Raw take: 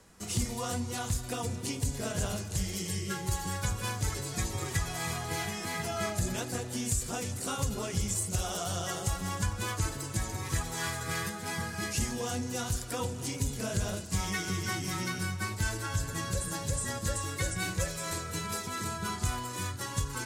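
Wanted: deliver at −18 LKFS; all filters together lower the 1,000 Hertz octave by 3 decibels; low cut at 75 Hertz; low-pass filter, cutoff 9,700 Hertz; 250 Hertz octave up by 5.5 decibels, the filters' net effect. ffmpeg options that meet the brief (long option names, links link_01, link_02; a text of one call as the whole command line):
ffmpeg -i in.wav -af "highpass=75,lowpass=9700,equalizer=frequency=250:width_type=o:gain=7.5,equalizer=frequency=1000:width_type=o:gain=-4.5,volume=15dB" out.wav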